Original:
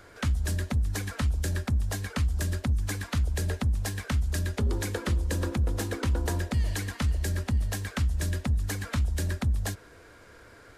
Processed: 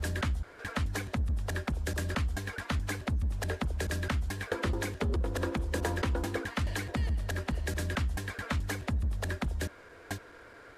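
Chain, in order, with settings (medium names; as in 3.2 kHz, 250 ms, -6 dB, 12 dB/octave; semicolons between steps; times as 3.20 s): slices played last to first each 215 ms, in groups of 3; tone controls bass -7 dB, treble -8 dB; trim +1.5 dB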